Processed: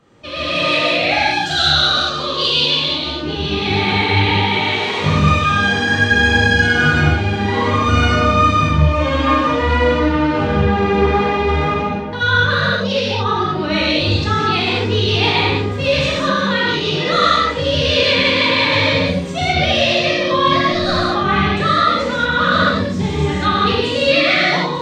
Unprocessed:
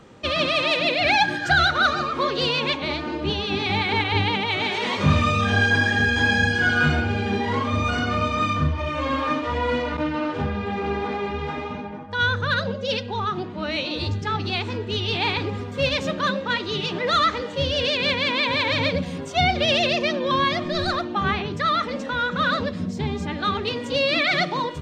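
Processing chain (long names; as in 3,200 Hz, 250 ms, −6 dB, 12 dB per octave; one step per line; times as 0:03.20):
0:01.28–0:03.11: high shelf with overshoot 2,600 Hz +6 dB, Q 3
automatic gain control gain up to 14.5 dB
reverb whose tail is shaped and stops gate 250 ms flat, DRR −7.5 dB
level −9.5 dB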